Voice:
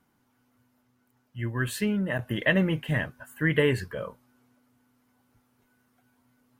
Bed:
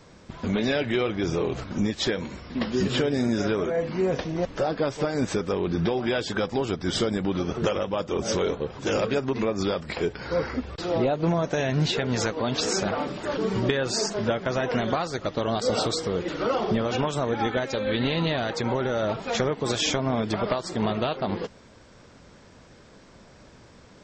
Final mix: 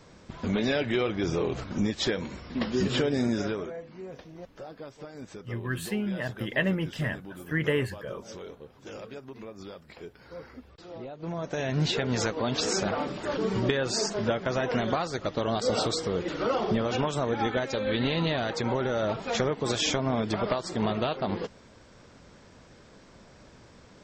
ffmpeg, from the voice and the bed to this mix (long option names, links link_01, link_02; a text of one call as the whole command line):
ffmpeg -i stem1.wav -i stem2.wav -filter_complex "[0:a]adelay=4100,volume=-3.5dB[link_01];[1:a]volume=13dB,afade=type=out:start_time=3.26:duration=0.57:silence=0.177828,afade=type=in:start_time=11.15:duration=0.73:silence=0.177828[link_02];[link_01][link_02]amix=inputs=2:normalize=0" out.wav